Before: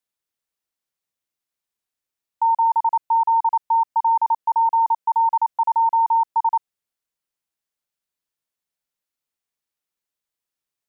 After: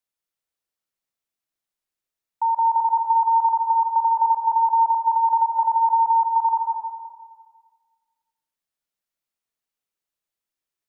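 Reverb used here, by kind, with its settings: algorithmic reverb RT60 1.6 s, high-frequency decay 0.5×, pre-delay 110 ms, DRR 2.5 dB; trim -3 dB

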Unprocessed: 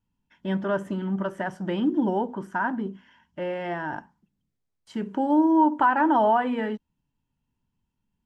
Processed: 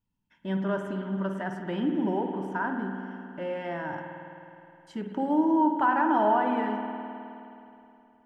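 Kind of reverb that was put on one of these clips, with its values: spring tank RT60 2.9 s, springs 52 ms, chirp 55 ms, DRR 4 dB; trim -4.5 dB

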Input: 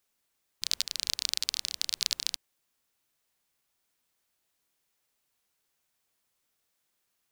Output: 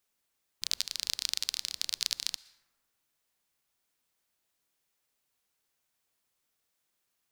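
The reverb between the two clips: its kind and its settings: plate-style reverb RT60 1.5 s, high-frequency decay 0.35×, pre-delay 105 ms, DRR 19 dB; trim -2 dB

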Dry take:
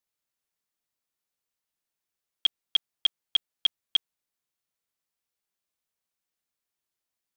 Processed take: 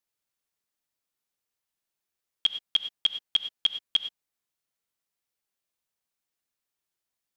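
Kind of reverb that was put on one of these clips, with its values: gated-style reverb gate 130 ms rising, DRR 9.5 dB

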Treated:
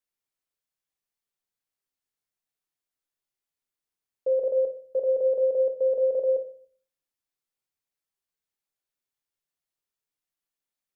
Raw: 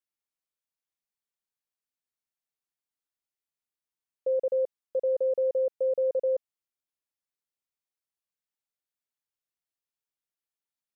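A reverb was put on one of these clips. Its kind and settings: simulated room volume 44 m³, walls mixed, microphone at 0.33 m; trim +1 dB

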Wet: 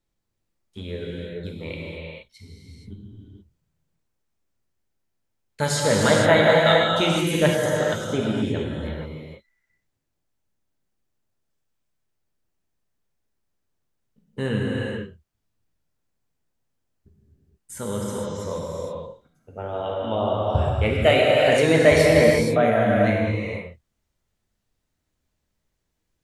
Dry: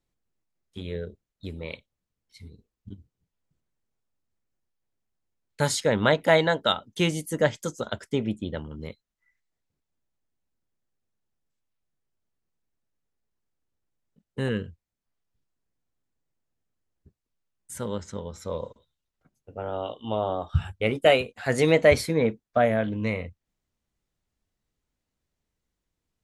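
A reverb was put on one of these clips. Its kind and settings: gated-style reverb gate 500 ms flat, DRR -4 dB

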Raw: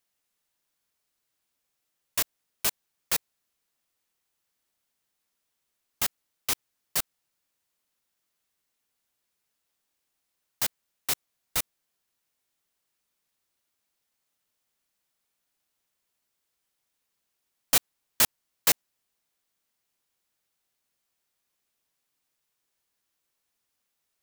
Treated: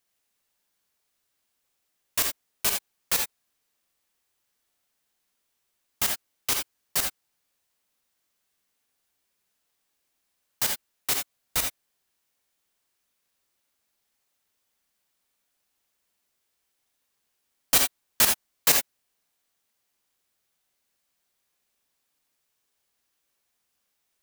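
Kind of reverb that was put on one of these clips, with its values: gated-style reverb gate 100 ms rising, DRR 2.5 dB; trim +1.5 dB

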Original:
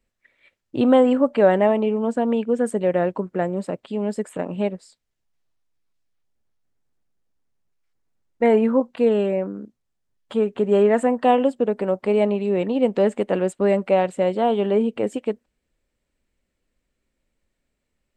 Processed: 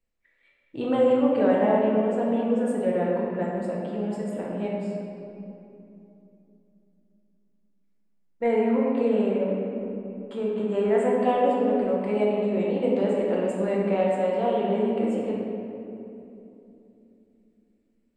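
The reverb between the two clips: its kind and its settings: simulated room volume 120 m³, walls hard, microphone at 0.67 m; trim -10.5 dB

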